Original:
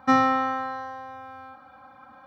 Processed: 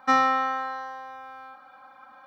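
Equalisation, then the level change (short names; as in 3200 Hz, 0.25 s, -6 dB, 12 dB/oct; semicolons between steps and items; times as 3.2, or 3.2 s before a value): HPF 790 Hz 6 dB/oct; +2.0 dB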